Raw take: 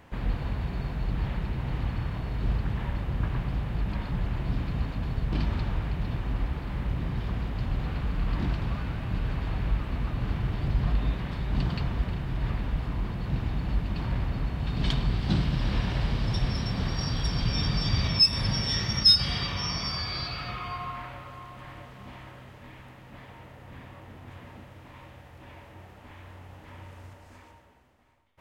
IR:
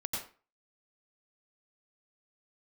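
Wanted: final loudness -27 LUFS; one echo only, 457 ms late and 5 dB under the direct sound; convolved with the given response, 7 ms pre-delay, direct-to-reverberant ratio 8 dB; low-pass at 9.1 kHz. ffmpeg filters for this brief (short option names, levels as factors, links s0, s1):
-filter_complex "[0:a]lowpass=9100,aecho=1:1:457:0.562,asplit=2[s0][s1];[1:a]atrim=start_sample=2205,adelay=7[s2];[s1][s2]afir=irnorm=-1:irlink=0,volume=0.282[s3];[s0][s3]amix=inputs=2:normalize=0"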